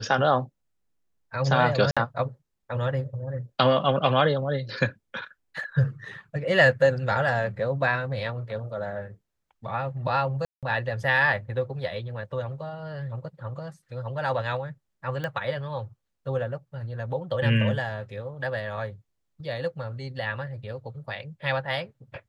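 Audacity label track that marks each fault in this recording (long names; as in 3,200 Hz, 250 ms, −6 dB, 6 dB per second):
1.910000	1.970000	drop-out 56 ms
10.450000	10.630000	drop-out 177 ms
15.240000	15.240000	click −19 dBFS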